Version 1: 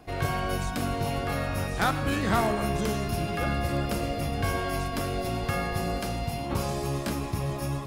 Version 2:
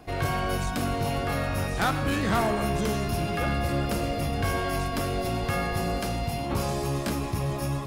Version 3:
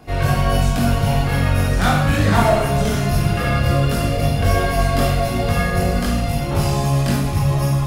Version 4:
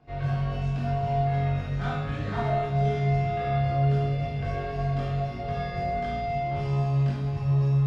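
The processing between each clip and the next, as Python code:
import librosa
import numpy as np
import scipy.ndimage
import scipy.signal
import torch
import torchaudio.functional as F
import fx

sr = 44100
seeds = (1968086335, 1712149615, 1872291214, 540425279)

y1 = 10.0 ** (-20.5 / 20.0) * np.tanh(x / 10.0 ** (-20.5 / 20.0))
y1 = y1 * librosa.db_to_amplitude(2.5)
y2 = fx.chorus_voices(y1, sr, voices=6, hz=0.83, base_ms=21, depth_ms=1.1, mix_pct=50)
y2 = fx.rev_schroeder(y2, sr, rt60_s=0.68, comb_ms=26, drr_db=1.0)
y2 = y2 * librosa.db_to_amplitude(8.5)
y3 = fx.air_absorb(y2, sr, metres=170.0)
y3 = fx.comb_fb(y3, sr, f0_hz=140.0, decay_s=1.1, harmonics='odd', damping=0.0, mix_pct=90)
y3 = y3 * librosa.db_to_amplitude(3.0)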